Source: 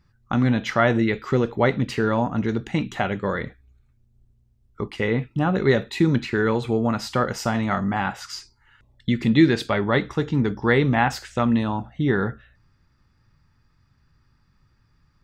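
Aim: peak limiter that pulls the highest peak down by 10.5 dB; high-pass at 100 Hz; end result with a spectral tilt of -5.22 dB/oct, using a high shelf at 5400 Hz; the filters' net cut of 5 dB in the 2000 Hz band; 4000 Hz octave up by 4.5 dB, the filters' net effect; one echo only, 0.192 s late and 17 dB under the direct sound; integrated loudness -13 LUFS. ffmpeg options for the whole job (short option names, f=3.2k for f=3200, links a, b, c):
-af "highpass=100,equalizer=f=2k:t=o:g=-8,equalizer=f=4k:t=o:g=6.5,highshelf=f=5.4k:g=3,alimiter=limit=-15dB:level=0:latency=1,aecho=1:1:192:0.141,volume=13.5dB"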